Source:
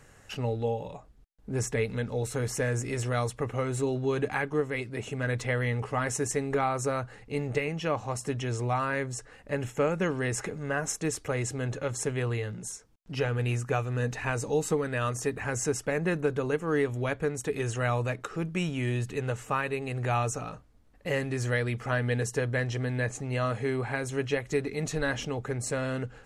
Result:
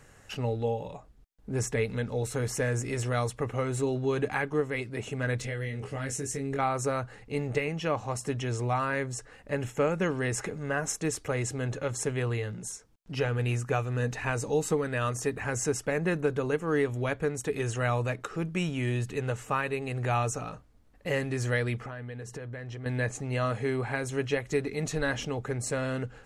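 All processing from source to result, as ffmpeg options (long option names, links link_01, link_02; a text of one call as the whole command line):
ffmpeg -i in.wav -filter_complex "[0:a]asettb=1/sr,asplit=3[link_01][link_02][link_03];[link_01]atrim=end=5.394[link_04];[link_02]atrim=start=5.39:end=6.59,asetpts=PTS-STARTPTS,afade=type=in:duration=0.004:curve=qsin,afade=type=out:start_time=1.196:duration=0.004:curve=qsin,equalizer=frequency=1000:width_type=o:width=1:gain=-12,acompressor=threshold=-31dB:ratio=4:attack=3.2:release=140:knee=1:detection=peak,asplit=2[link_05][link_06];[link_06]adelay=22,volume=-5dB[link_07];[link_05][link_07]amix=inputs=2:normalize=0,atrim=end_sample=52920[link_08];[link_03]atrim=start=6.586[link_09];[link_04][link_08]acrossfade=duration=0.004:curve1=hsin:curve2=qsin[link_10];[link_10][link_09]acrossfade=duration=0.004:curve1=qsin:curve2=hsin,asettb=1/sr,asplit=3[link_11][link_12][link_13];[link_11]atrim=end=21.774[link_14];[link_12]atrim=start=21.77:end=22.86,asetpts=PTS-STARTPTS,afade=type=in:duration=0.004:curve=qsin,afade=type=out:start_time=1.086:duration=0.004:curve=qsin,highshelf=frequency=4800:gain=-9.5,acompressor=threshold=-35dB:ratio=16:attack=3.2:release=140:knee=1:detection=peak[link_15];[link_13]atrim=start=22.856[link_16];[link_14][link_15]acrossfade=duration=0.004:curve1=hsin:curve2=qsin[link_17];[link_17][link_16]acrossfade=duration=0.004:curve1=qsin:curve2=hsin" out.wav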